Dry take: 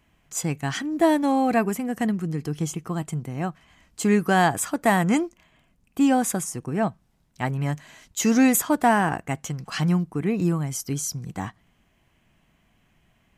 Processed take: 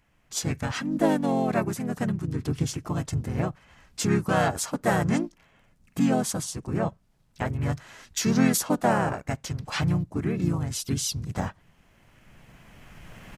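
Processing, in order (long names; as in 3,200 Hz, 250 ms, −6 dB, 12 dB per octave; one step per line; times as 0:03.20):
camcorder AGC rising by 10 dB per second
pitch-shifted copies added −12 semitones −9 dB, −7 semitones −5 dB, −3 semitones −1 dB
level −7 dB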